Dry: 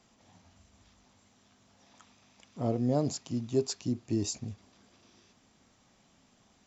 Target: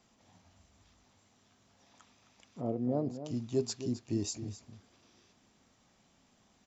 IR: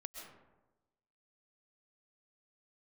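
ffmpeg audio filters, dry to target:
-filter_complex "[0:a]asplit=3[link_01][link_02][link_03];[link_01]afade=type=out:start_time=2.6:duration=0.02[link_04];[link_02]bandpass=frequency=350:width_type=q:width=0.54:csg=0,afade=type=in:start_time=2.6:duration=0.02,afade=type=out:start_time=3.24:duration=0.02[link_05];[link_03]afade=type=in:start_time=3.24:duration=0.02[link_06];[link_04][link_05][link_06]amix=inputs=3:normalize=0,asplit=2[link_07][link_08];[link_08]adelay=262.4,volume=-11dB,highshelf=frequency=4000:gain=-5.9[link_09];[link_07][link_09]amix=inputs=2:normalize=0,volume=-3dB"

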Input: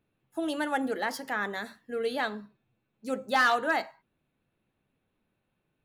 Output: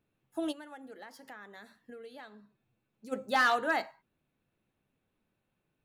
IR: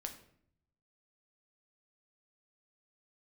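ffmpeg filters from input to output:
-filter_complex "[0:a]asplit=3[link_01][link_02][link_03];[link_01]afade=type=out:start_time=0.51:duration=0.02[link_04];[link_02]acompressor=threshold=-45dB:ratio=5,afade=type=in:start_time=0.51:duration=0.02,afade=type=out:start_time=3.11:duration=0.02[link_05];[link_03]afade=type=in:start_time=3.11:duration=0.02[link_06];[link_04][link_05][link_06]amix=inputs=3:normalize=0,volume=-2.5dB"

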